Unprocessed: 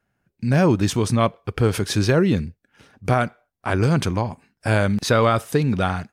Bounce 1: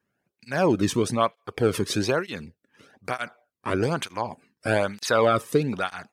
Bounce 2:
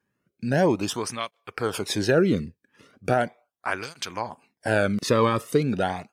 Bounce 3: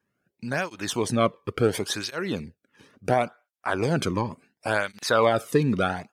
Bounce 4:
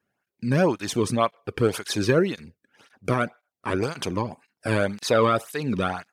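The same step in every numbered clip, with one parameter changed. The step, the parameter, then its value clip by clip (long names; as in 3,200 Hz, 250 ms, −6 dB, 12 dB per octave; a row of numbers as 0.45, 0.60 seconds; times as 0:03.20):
through-zero flanger with one copy inverted, nulls at: 1.1, 0.38, 0.71, 1.9 Hertz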